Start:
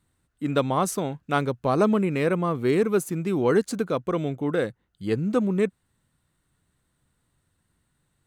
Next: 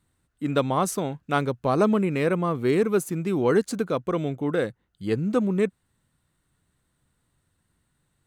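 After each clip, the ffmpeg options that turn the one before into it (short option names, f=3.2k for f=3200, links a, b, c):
-af anull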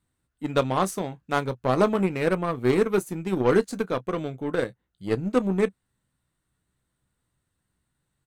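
-filter_complex "[0:a]asplit=2[a][b];[b]aecho=0:1:16|31:0.299|0.158[c];[a][c]amix=inputs=2:normalize=0,aeval=exprs='0.376*(cos(1*acos(clip(val(0)/0.376,-1,1)))-cos(1*PI/2))+0.00668*(cos(6*acos(clip(val(0)/0.376,-1,1)))-cos(6*PI/2))+0.0266*(cos(7*acos(clip(val(0)/0.376,-1,1)))-cos(7*PI/2))':c=same"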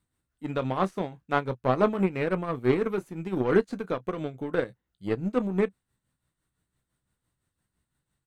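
-filter_complex "[0:a]tremolo=f=5.9:d=0.59,acrossover=split=3700[a][b];[b]acompressor=threshold=-59dB:ratio=4:attack=1:release=60[c];[a][c]amix=inputs=2:normalize=0"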